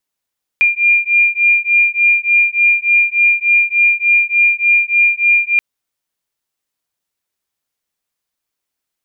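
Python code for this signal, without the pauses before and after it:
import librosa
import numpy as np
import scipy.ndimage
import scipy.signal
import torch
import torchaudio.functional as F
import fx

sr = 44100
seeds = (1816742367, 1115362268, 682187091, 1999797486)

y = fx.two_tone_beats(sr, length_s=4.98, hz=2400.0, beat_hz=3.4, level_db=-12.5)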